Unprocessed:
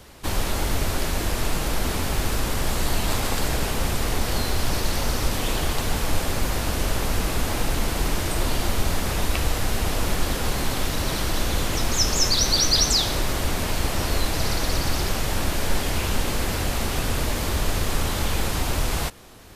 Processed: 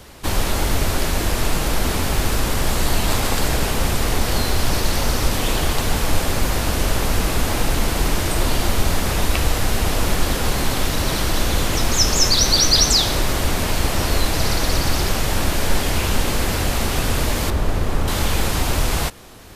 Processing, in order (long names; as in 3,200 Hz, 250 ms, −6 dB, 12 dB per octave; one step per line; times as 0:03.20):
0:17.50–0:18.08: high-shelf EQ 2,100 Hz −12 dB
level +4.5 dB